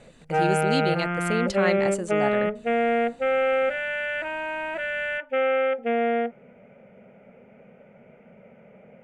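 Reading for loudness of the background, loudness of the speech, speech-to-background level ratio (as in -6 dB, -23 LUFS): -25.0 LUFS, -29.5 LUFS, -4.5 dB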